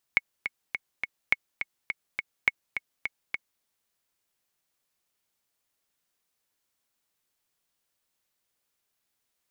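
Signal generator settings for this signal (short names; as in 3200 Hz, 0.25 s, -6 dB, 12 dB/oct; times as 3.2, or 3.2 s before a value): metronome 208 bpm, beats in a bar 4, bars 3, 2200 Hz, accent 9 dB -7 dBFS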